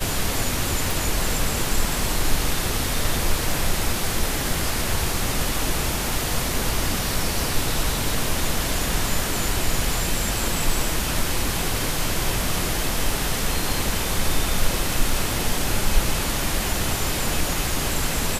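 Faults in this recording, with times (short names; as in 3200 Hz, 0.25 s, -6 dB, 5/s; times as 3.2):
0.91 pop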